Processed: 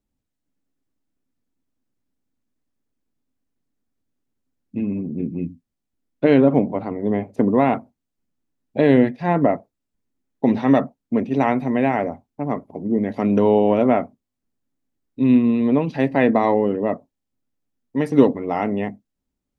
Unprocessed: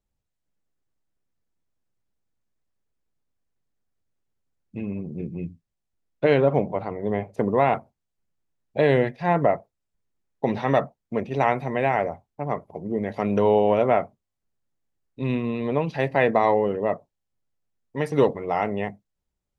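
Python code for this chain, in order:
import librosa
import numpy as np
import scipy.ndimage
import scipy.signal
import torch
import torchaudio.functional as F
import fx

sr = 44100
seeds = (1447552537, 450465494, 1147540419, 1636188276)

y = fx.peak_eq(x, sr, hz=260.0, db=14.0, octaves=0.63)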